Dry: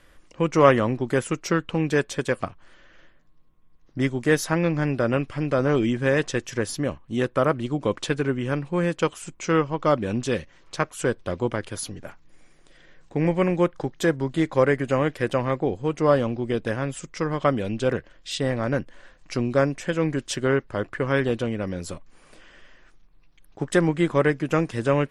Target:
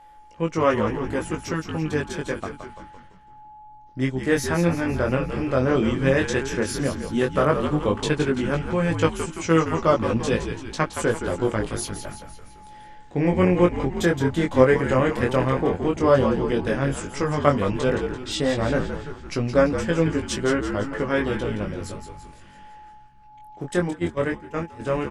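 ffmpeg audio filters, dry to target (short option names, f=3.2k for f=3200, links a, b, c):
-filter_complex "[0:a]dynaudnorm=f=270:g=31:m=11.5dB,asplit=2[a][b];[b]asplit=6[c][d][e][f][g][h];[c]adelay=169,afreqshift=-67,volume=-8dB[i];[d]adelay=338,afreqshift=-134,volume=-13.5dB[j];[e]adelay=507,afreqshift=-201,volume=-19dB[k];[f]adelay=676,afreqshift=-268,volume=-24.5dB[l];[g]adelay=845,afreqshift=-335,volume=-30.1dB[m];[h]adelay=1014,afreqshift=-402,volume=-35.6dB[n];[i][j][k][l][m][n]amix=inputs=6:normalize=0[o];[a][o]amix=inputs=2:normalize=0,asplit=3[p][q][r];[p]afade=t=out:st=23.88:d=0.02[s];[q]agate=range=-15dB:threshold=-19dB:ratio=16:detection=peak,afade=t=in:st=23.88:d=0.02,afade=t=out:st=24.79:d=0.02[t];[r]afade=t=in:st=24.79:d=0.02[u];[s][t][u]amix=inputs=3:normalize=0,aeval=exprs='val(0)+0.00891*sin(2*PI*850*n/s)':c=same,flanger=delay=18:depth=5.4:speed=0.1,volume=-1dB"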